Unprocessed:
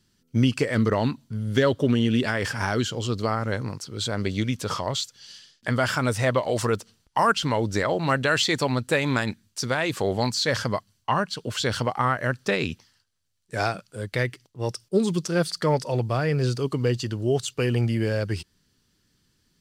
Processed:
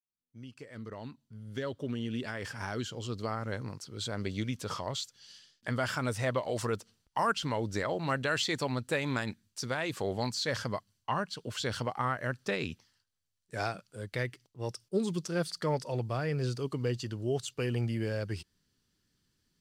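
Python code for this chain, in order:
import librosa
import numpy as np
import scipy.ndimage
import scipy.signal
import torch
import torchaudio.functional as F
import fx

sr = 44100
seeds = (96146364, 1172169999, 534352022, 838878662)

y = fx.fade_in_head(x, sr, length_s=3.78)
y = y * librosa.db_to_amplitude(-8.5)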